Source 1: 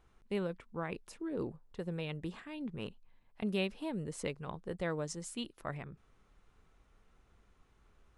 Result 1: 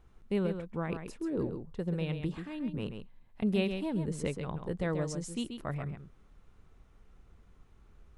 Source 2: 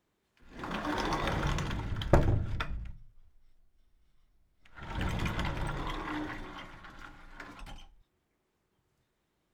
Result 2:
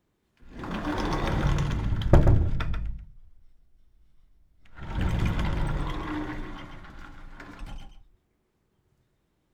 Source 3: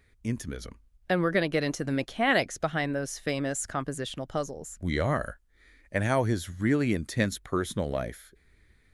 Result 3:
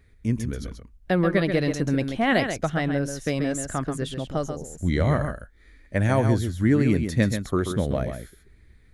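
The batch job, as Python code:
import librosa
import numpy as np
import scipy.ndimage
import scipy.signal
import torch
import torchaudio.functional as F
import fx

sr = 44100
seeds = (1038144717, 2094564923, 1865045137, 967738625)

y = fx.low_shelf(x, sr, hz=370.0, db=8.0)
y = y + 10.0 ** (-7.5 / 20.0) * np.pad(y, (int(134 * sr / 1000.0), 0))[:len(y)]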